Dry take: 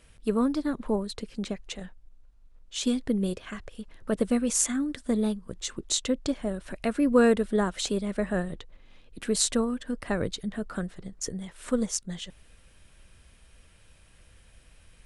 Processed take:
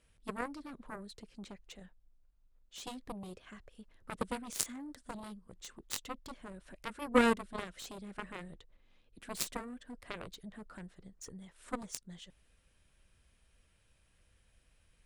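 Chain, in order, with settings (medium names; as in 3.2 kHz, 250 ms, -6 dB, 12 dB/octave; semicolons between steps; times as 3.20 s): Chebyshev shaper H 5 -35 dB, 6 -15 dB, 7 -14 dB, 8 -20 dB, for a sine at -5.5 dBFS; dynamic bell 810 Hz, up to -5 dB, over -54 dBFS, Q 3.7; trim -2.5 dB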